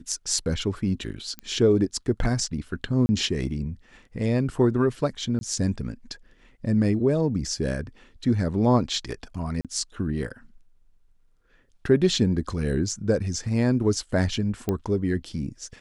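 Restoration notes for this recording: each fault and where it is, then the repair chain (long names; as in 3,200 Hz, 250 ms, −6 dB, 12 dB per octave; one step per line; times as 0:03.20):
0:01.39: click −18 dBFS
0:03.06–0:03.09: drop-out 30 ms
0:05.39–0:05.41: drop-out 21 ms
0:09.61–0:09.65: drop-out 37 ms
0:14.69: click −13 dBFS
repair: click removal
repair the gap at 0:03.06, 30 ms
repair the gap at 0:05.39, 21 ms
repair the gap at 0:09.61, 37 ms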